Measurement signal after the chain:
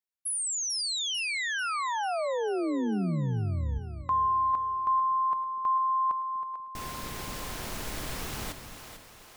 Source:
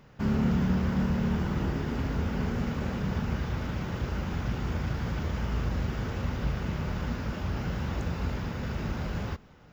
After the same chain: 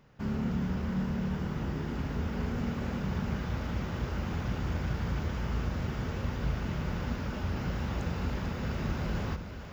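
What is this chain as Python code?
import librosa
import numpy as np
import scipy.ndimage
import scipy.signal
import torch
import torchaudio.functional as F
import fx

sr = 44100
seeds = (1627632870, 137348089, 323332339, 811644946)

y = fx.rider(x, sr, range_db=4, speed_s=2.0)
y = fx.echo_split(y, sr, split_hz=370.0, low_ms=244, high_ms=444, feedback_pct=52, wet_db=-9.0)
y = F.gain(torch.from_numpy(y), -3.5).numpy()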